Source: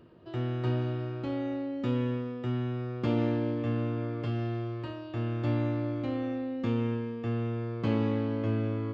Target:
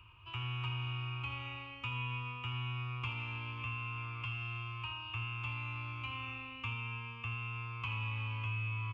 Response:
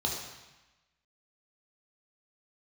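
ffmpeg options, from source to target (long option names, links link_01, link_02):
-filter_complex "[0:a]firequalizer=gain_entry='entry(100,0);entry(170,-28);entry(630,-28);entry(1000,3);entry(1800,-15);entry(2500,14);entry(4000,-14);entry(7300,-8)':delay=0.05:min_phase=1,acrossover=split=130|2600[link_01][link_02][link_03];[link_01]acompressor=threshold=-52dB:ratio=4[link_04];[link_02]acompressor=threshold=-48dB:ratio=4[link_05];[link_03]acompressor=threshold=-53dB:ratio=4[link_06];[link_04][link_05][link_06]amix=inputs=3:normalize=0,asplit=2[link_07][link_08];[link_08]aecho=0:1:81:0.282[link_09];[link_07][link_09]amix=inputs=2:normalize=0,volume=5.5dB"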